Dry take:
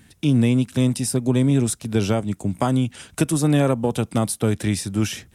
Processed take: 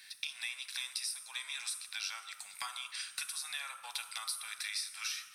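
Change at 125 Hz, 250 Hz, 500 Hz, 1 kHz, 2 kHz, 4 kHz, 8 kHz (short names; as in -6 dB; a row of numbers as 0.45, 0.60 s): under -40 dB, under -40 dB, under -40 dB, -17.5 dB, -6.5 dB, -4.0 dB, -10.0 dB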